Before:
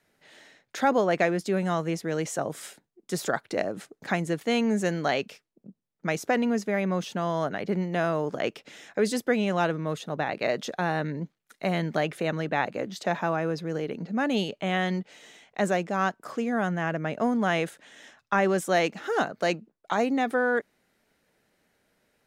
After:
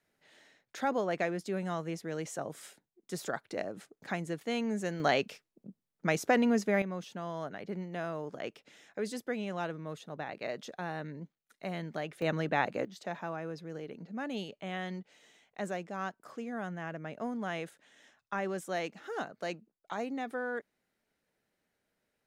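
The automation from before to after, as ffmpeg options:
-af "asetnsamples=n=441:p=0,asendcmd='5 volume volume -1.5dB;6.82 volume volume -11dB;12.22 volume volume -3dB;12.85 volume volume -11.5dB',volume=0.376"

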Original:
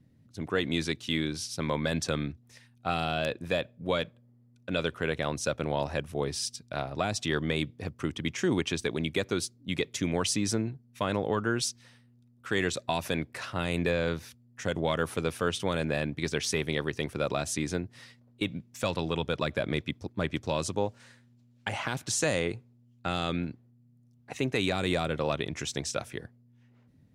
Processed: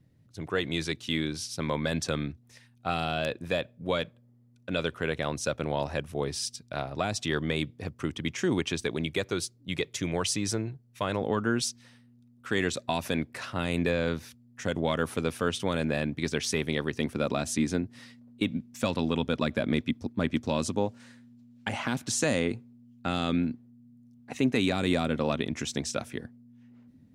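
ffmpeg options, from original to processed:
-af "asetnsamples=n=441:p=0,asendcmd='0.92 equalizer g 0.5;9.06 equalizer g -6;11.21 equalizer g 5.5;16.97 equalizer g 11.5',equalizer=f=240:t=o:w=0.39:g=-6.5"

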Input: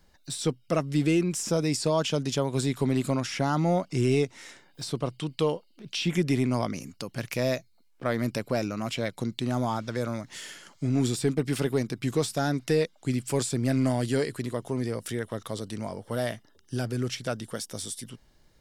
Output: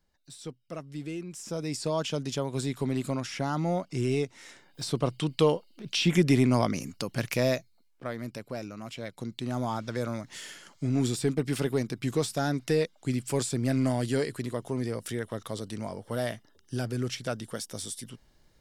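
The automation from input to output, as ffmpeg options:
-af "volume=3.35,afade=t=in:st=1.28:d=0.66:silence=0.354813,afade=t=in:st=4.39:d=0.74:silence=0.446684,afade=t=out:st=7.22:d=0.93:silence=0.251189,afade=t=in:st=8.97:d=0.93:silence=0.421697"

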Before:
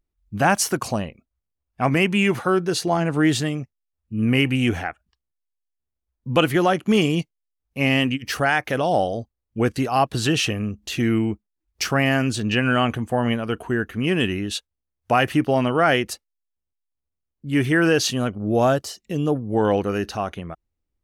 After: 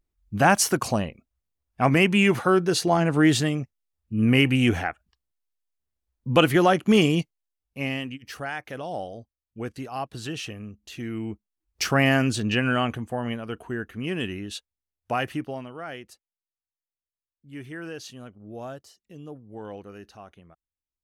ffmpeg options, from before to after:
-af "volume=4.22,afade=t=out:st=7.03:d=1:silence=0.237137,afade=t=in:st=11.13:d=0.91:silence=0.237137,afade=t=out:st=12.04:d=1.16:silence=0.398107,afade=t=out:st=15.21:d=0.46:silence=0.281838"

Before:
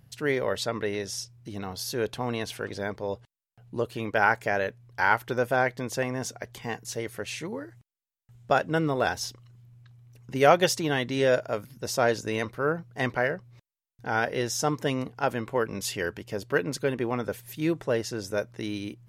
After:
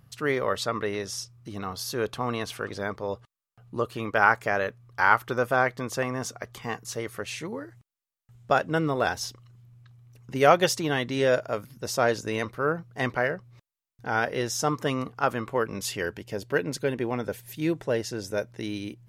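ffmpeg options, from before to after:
-af "asetnsamples=n=441:p=0,asendcmd='7.21 equalizer g 4.5;14.69 equalizer g 12.5;15.48 equalizer g 4.5;16.05 equalizer g -5',equalizer=f=1200:t=o:w=0.26:g=12.5"

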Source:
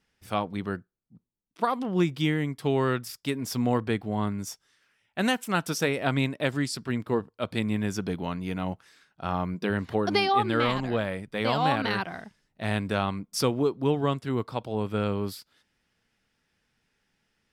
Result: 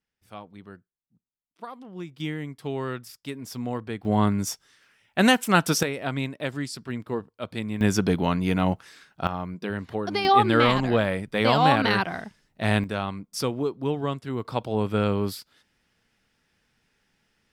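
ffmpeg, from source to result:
-af "asetnsamples=n=441:p=0,asendcmd='2.2 volume volume -5.5dB;4.05 volume volume 7dB;5.83 volume volume -3dB;7.81 volume volume 8dB;9.27 volume volume -3dB;10.25 volume volume 5.5dB;12.84 volume volume -2dB;14.45 volume volume 4dB',volume=0.224"

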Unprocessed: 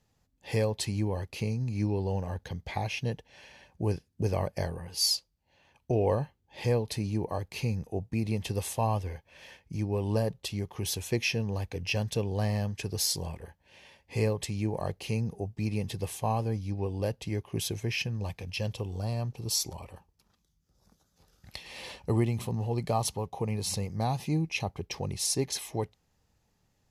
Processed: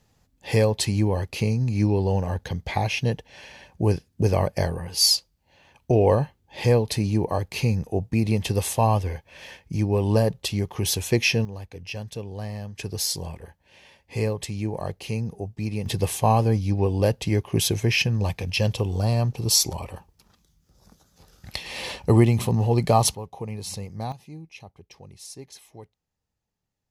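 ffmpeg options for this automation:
-af "asetnsamples=n=441:p=0,asendcmd='11.45 volume volume -4dB;12.76 volume volume 2.5dB;15.86 volume volume 10dB;23.15 volume volume -1.5dB;24.12 volume volume -12dB',volume=2.51"

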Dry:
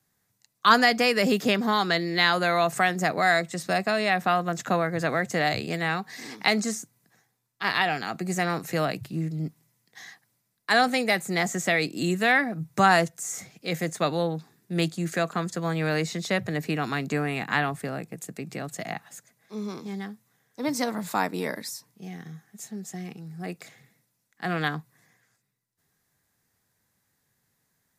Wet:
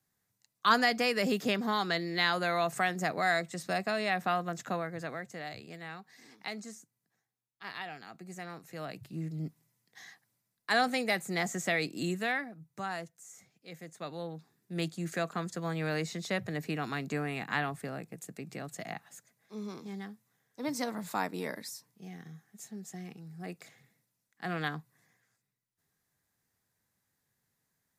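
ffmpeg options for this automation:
-af "volume=5.62,afade=t=out:st=4.35:d=1:silence=0.316228,afade=t=in:st=8.75:d=0.63:silence=0.298538,afade=t=out:st=12.01:d=0.57:silence=0.251189,afade=t=in:st=13.89:d=1.19:silence=0.266073"

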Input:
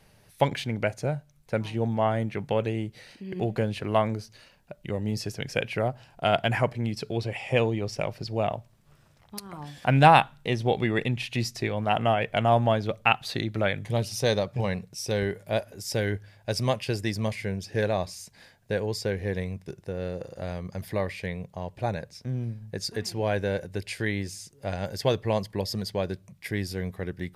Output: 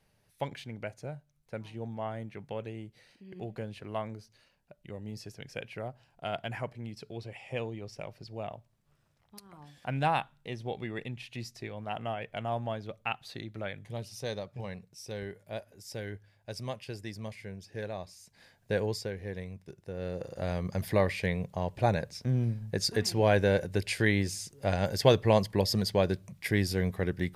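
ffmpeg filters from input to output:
-af "volume=3.35,afade=t=in:st=18.21:d=0.61:silence=0.281838,afade=t=out:st=18.82:d=0.28:silence=0.398107,afade=t=in:st=19.8:d=0.88:silence=0.266073"

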